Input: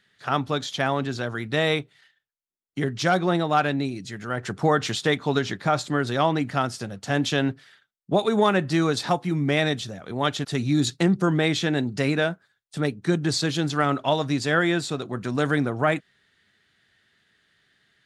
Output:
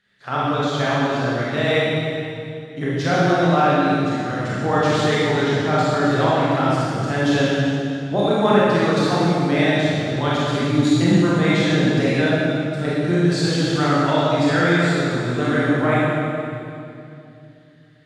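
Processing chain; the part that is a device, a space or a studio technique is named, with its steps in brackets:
swimming-pool hall (convolution reverb RT60 2.6 s, pre-delay 25 ms, DRR −8.5 dB; high-shelf EQ 5,600 Hz −7.5 dB)
level −3.5 dB

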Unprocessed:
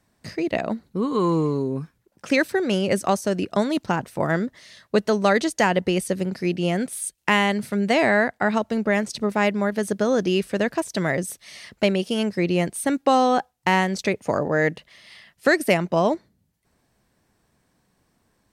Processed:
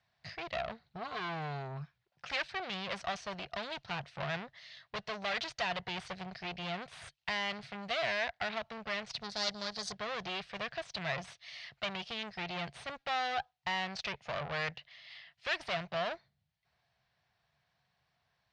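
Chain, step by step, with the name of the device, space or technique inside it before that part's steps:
scooped metal amplifier (tube saturation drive 27 dB, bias 0.8; loudspeaker in its box 83–4,300 Hz, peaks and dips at 140 Hz +8 dB, 340 Hz +4 dB, 700 Hz +9 dB; guitar amp tone stack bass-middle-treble 10-0-10)
0:09.22–0:09.92: high shelf with overshoot 3,500 Hz +10 dB, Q 3
level +4 dB

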